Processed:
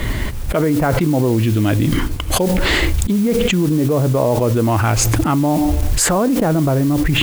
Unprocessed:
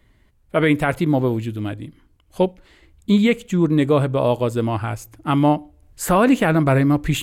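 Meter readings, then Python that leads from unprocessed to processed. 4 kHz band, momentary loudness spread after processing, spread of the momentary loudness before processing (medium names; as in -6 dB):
+9.0 dB, 3 LU, 12 LU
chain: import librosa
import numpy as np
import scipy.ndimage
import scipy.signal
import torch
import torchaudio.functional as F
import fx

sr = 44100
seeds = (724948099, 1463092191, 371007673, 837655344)

y = fx.env_lowpass_down(x, sr, base_hz=920.0, full_db=-13.5)
y = fx.mod_noise(y, sr, seeds[0], snr_db=21)
y = fx.env_flatten(y, sr, amount_pct=100)
y = F.gain(torch.from_numpy(y), -3.5).numpy()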